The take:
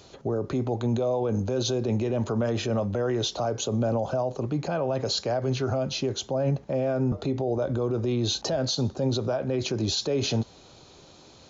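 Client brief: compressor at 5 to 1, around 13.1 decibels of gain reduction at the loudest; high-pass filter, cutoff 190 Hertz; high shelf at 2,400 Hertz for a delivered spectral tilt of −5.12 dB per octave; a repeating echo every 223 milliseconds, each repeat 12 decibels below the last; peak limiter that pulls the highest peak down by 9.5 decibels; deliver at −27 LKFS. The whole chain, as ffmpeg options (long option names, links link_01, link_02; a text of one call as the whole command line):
ffmpeg -i in.wav -af "highpass=190,highshelf=frequency=2400:gain=-7,acompressor=threshold=-39dB:ratio=5,alimiter=level_in=13.5dB:limit=-24dB:level=0:latency=1,volume=-13.5dB,aecho=1:1:223|446|669:0.251|0.0628|0.0157,volume=18.5dB" out.wav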